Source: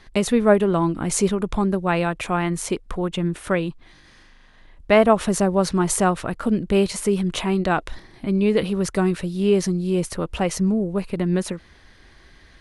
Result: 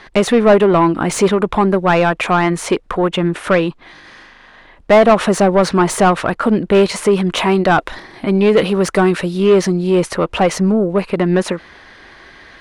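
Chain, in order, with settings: 7.37–9.38 s: treble shelf 7.4 kHz +6 dB; overdrive pedal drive 21 dB, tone 1.6 kHz, clips at -2.5 dBFS; trim +2 dB

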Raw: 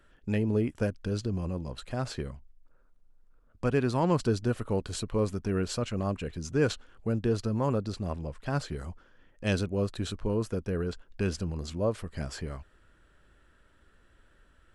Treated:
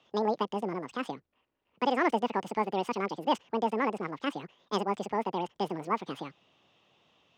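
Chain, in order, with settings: treble shelf 6.8 kHz -6.5 dB; speed mistake 7.5 ips tape played at 15 ips; high-pass 120 Hz 12 dB/octave; three-band isolator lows -16 dB, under 180 Hz, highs -21 dB, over 5.6 kHz

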